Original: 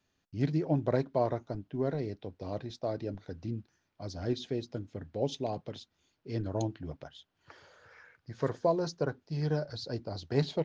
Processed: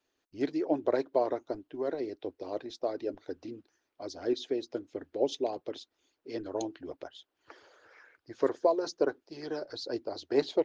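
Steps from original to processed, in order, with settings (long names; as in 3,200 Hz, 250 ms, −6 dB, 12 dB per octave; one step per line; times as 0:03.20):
low shelf with overshoot 240 Hz −10 dB, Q 3
harmonic and percussive parts rebalanced harmonic −10 dB
level +2 dB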